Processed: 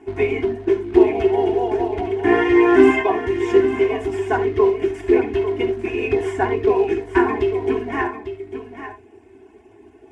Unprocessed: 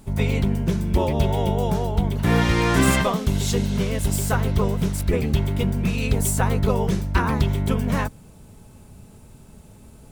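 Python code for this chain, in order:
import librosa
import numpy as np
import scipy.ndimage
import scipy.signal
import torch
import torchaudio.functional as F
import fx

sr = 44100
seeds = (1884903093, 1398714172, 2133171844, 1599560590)

p1 = fx.cvsd(x, sr, bps=64000)
p2 = fx.dereverb_blind(p1, sr, rt60_s=1.0)
p3 = fx.peak_eq(p2, sr, hz=380.0, db=10.0, octaves=0.24)
p4 = fx.fixed_phaser(p3, sr, hz=840.0, stages=8)
p5 = p4 + 0.84 * np.pad(p4, (int(2.8 * sr / 1000.0), 0))[:len(p4)]
p6 = fx.quant_float(p5, sr, bits=2)
p7 = p5 + F.gain(torch.from_numpy(p6), -5.0).numpy()
p8 = fx.bandpass_edges(p7, sr, low_hz=180.0, high_hz=2600.0)
p9 = p8 + 10.0 ** (-10.5 / 20.0) * np.pad(p8, (int(848 * sr / 1000.0), 0))[:len(p8)]
p10 = fx.rev_gated(p9, sr, seeds[0], gate_ms=100, shape='flat', drr_db=7.5)
y = F.gain(torch.from_numpy(p10), 1.0).numpy()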